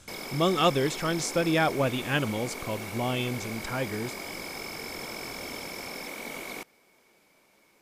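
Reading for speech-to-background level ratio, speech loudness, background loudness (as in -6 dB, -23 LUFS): 8.5 dB, -28.5 LUFS, -37.0 LUFS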